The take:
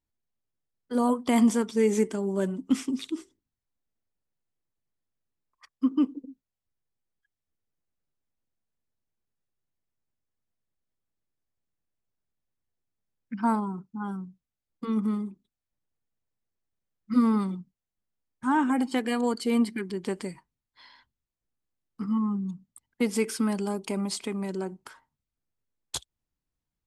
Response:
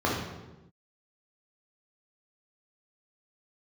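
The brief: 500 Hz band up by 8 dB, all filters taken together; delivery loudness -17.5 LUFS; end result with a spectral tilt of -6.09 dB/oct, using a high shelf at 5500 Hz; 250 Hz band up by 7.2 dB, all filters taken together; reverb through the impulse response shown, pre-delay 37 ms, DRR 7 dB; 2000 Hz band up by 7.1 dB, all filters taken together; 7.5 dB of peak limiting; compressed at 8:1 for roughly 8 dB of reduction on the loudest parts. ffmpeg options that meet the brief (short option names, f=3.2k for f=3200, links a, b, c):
-filter_complex "[0:a]equalizer=f=250:t=o:g=6.5,equalizer=f=500:t=o:g=7,equalizer=f=2k:t=o:g=7.5,highshelf=f=5.5k:g=6,acompressor=threshold=-17dB:ratio=8,alimiter=limit=-15dB:level=0:latency=1,asplit=2[a][b];[1:a]atrim=start_sample=2205,adelay=37[c];[b][c]afir=irnorm=-1:irlink=0,volume=-21dB[d];[a][d]amix=inputs=2:normalize=0,volume=6.5dB"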